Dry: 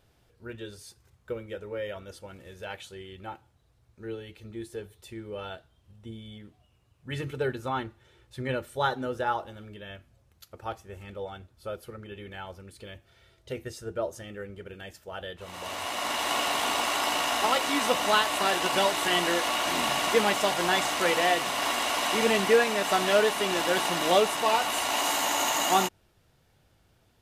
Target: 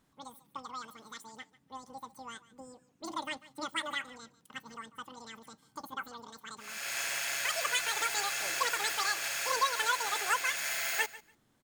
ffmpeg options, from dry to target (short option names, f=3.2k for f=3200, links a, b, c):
-filter_complex "[0:a]asplit=2[a][b];[b]aecho=0:1:339|678:0.119|0.0202[c];[a][c]amix=inputs=2:normalize=0,asetrate=103194,aresample=44100,volume=-7dB"